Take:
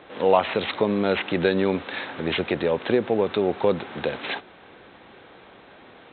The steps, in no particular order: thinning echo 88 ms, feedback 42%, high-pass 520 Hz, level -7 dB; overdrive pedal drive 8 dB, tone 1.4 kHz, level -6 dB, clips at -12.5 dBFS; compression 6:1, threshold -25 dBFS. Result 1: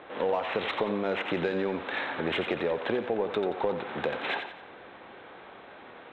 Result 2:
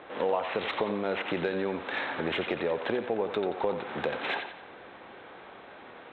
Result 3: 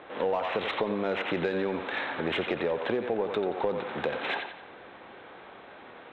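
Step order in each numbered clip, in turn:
overdrive pedal > compression > thinning echo; compression > thinning echo > overdrive pedal; thinning echo > overdrive pedal > compression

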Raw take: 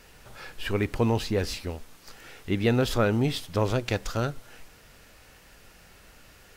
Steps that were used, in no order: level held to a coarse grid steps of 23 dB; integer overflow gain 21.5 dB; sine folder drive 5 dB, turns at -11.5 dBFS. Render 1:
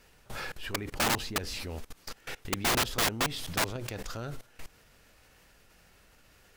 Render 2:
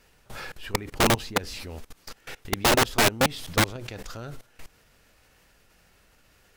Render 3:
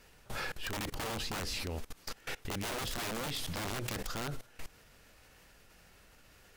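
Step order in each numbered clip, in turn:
level held to a coarse grid > sine folder > integer overflow; level held to a coarse grid > integer overflow > sine folder; integer overflow > level held to a coarse grid > sine folder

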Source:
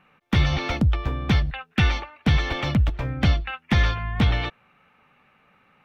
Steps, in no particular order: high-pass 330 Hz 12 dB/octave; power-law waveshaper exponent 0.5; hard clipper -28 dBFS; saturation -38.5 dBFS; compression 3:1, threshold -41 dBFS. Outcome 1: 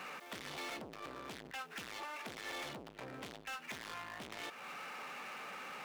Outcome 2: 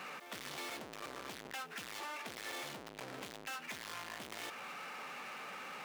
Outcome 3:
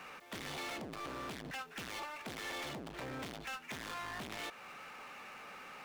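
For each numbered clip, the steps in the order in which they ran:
hard clipper > power-law waveshaper > compression > high-pass > saturation; hard clipper > power-law waveshaper > saturation > high-pass > compression; hard clipper > high-pass > compression > saturation > power-law waveshaper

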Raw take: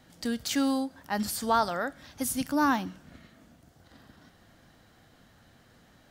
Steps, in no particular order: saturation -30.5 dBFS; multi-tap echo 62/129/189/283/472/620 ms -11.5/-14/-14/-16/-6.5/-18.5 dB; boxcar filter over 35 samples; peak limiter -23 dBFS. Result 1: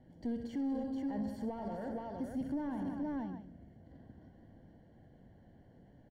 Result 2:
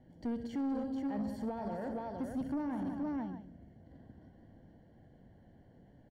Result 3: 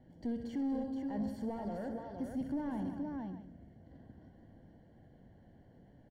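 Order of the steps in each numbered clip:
multi-tap echo > peak limiter > saturation > boxcar filter; multi-tap echo > peak limiter > boxcar filter > saturation; peak limiter > multi-tap echo > saturation > boxcar filter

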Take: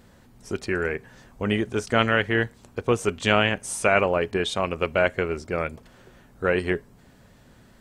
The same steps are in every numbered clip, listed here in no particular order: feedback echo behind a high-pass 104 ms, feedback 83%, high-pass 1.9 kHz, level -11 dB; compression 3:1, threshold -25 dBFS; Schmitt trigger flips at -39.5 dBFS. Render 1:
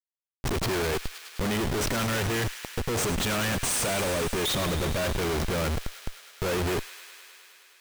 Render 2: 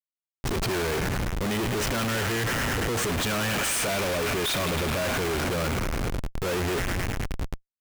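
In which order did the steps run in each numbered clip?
Schmitt trigger > feedback echo behind a high-pass > compression; feedback echo behind a high-pass > Schmitt trigger > compression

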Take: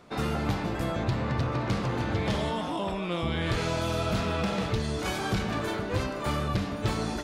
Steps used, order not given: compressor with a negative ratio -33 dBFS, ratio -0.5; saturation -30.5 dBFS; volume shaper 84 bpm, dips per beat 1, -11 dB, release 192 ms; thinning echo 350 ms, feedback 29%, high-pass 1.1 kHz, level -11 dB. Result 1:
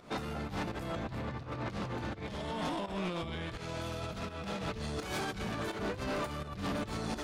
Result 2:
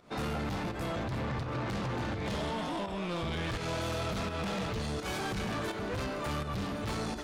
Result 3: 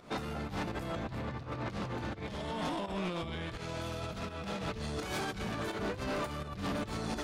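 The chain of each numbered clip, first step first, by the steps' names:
thinning echo > compressor with a negative ratio > saturation > volume shaper; thinning echo > volume shaper > saturation > compressor with a negative ratio; thinning echo > compressor with a negative ratio > volume shaper > saturation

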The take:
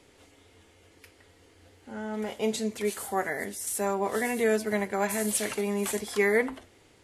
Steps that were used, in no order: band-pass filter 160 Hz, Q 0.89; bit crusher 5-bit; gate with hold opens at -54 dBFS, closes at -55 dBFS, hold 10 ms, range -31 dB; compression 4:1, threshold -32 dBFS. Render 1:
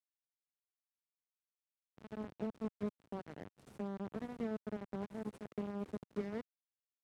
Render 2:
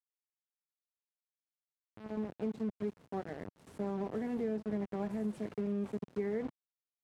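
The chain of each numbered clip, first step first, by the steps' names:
compression > bit crusher > gate with hold > band-pass filter; gate with hold > bit crusher > band-pass filter > compression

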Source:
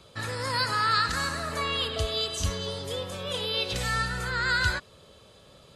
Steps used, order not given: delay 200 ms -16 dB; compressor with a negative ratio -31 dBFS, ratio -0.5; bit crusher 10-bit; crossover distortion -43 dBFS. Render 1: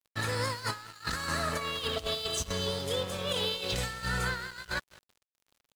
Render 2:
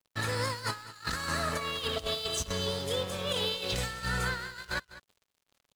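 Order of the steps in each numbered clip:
compressor with a negative ratio > delay > crossover distortion > bit crusher; compressor with a negative ratio > bit crusher > crossover distortion > delay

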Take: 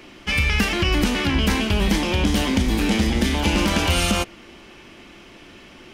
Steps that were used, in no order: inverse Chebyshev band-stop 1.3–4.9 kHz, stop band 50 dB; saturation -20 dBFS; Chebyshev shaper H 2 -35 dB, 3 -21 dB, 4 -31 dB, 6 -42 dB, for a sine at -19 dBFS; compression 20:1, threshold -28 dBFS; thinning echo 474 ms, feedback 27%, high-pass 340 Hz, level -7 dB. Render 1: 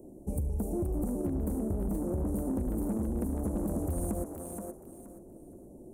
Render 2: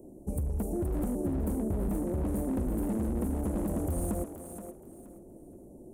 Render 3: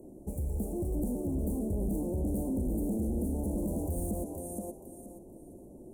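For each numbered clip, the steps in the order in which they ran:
inverse Chebyshev band-stop > saturation > thinning echo > Chebyshev shaper > compression; inverse Chebyshev band-stop > Chebyshev shaper > saturation > compression > thinning echo; thinning echo > Chebyshev shaper > saturation > compression > inverse Chebyshev band-stop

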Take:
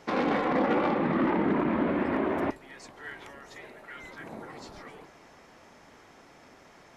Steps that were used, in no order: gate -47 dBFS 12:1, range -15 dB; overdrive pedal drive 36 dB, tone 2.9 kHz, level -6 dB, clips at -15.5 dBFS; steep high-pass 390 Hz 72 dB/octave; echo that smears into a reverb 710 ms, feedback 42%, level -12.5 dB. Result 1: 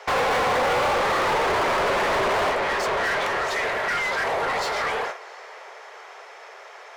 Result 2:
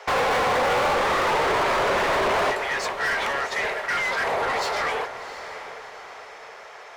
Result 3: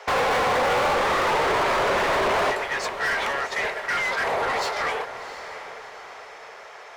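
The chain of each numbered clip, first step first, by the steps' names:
echo that smears into a reverb > gate > steep high-pass > overdrive pedal; gate > steep high-pass > overdrive pedal > echo that smears into a reverb; steep high-pass > gate > overdrive pedal > echo that smears into a reverb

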